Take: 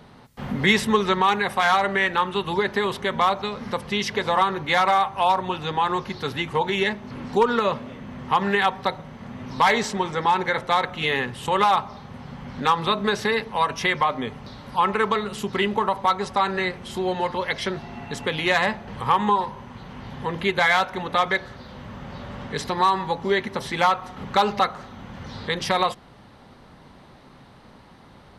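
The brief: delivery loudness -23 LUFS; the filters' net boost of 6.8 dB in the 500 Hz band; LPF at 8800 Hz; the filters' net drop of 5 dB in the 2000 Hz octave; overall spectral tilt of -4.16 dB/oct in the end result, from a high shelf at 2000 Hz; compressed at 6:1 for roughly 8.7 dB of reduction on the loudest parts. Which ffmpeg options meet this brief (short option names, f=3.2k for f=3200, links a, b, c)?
-af "lowpass=8.8k,equalizer=f=500:t=o:g=9,highshelf=f=2k:g=-5.5,equalizer=f=2k:t=o:g=-3.5,acompressor=threshold=-18dB:ratio=6,volume=1.5dB"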